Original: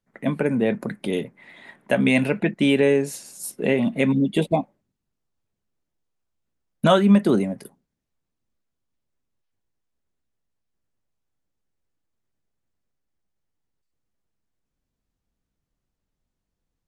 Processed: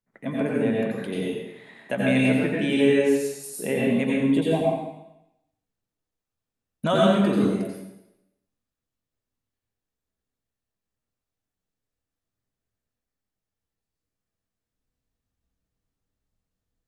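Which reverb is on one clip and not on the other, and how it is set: plate-style reverb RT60 0.86 s, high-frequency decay 1×, pre-delay 75 ms, DRR -4.5 dB; gain -7.5 dB

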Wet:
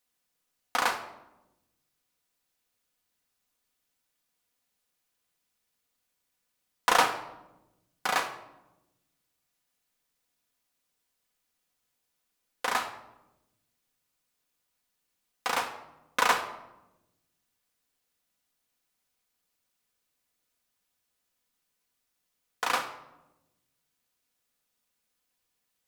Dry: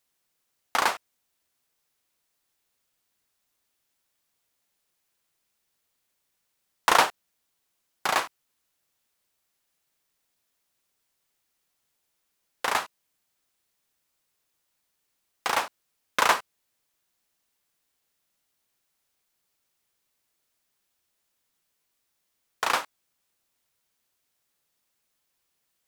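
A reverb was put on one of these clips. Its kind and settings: shoebox room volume 3700 m³, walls furnished, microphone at 1.9 m; gain -4 dB

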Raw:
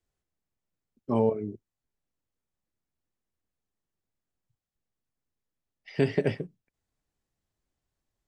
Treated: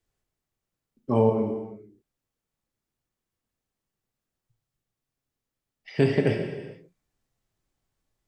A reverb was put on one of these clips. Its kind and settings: non-linear reverb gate 0.48 s falling, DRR 3 dB; gain +2.5 dB

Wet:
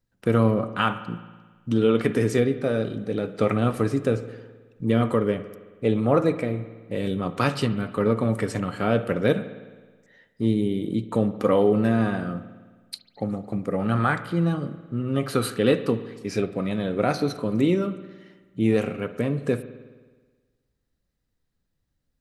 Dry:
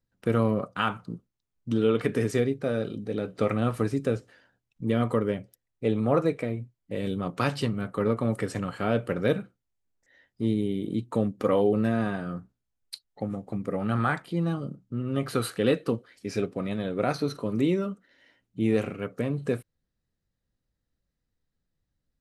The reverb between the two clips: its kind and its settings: spring tank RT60 1.4 s, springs 53 ms, chirp 20 ms, DRR 12 dB; gain +3.5 dB

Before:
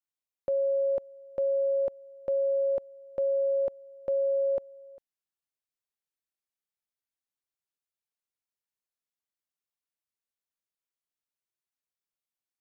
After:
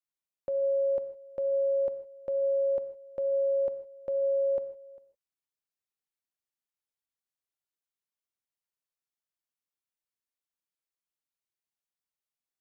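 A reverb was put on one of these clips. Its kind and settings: non-linear reverb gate 0.18 s flat, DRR 11 dB; gain -3.5 dB

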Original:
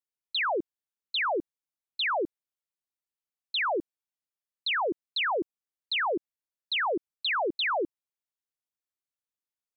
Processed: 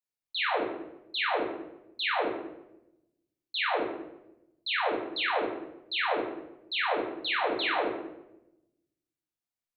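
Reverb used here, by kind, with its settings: shoebox room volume 310 m³, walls mixed, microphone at 1.9 m; gain -6.5 dB

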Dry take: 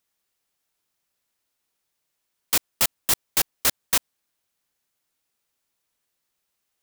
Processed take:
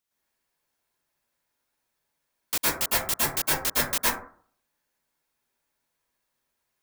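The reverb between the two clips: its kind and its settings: plate-style reverb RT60 0.51 s, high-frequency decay 0.3×, pre-delay 0.1 s, DRR -9 dB; gain -7 dB

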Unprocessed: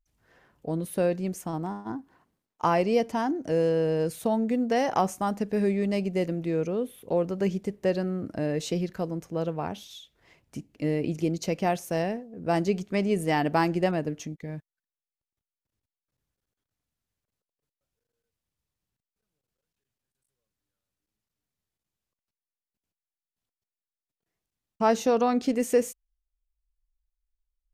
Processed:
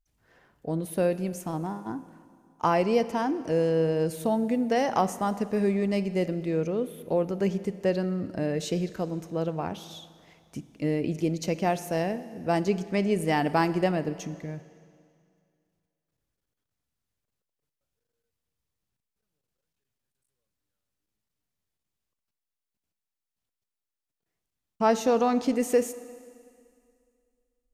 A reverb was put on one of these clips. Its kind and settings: Schroeder reverb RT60 2.3 s, DRR 14.5 dB

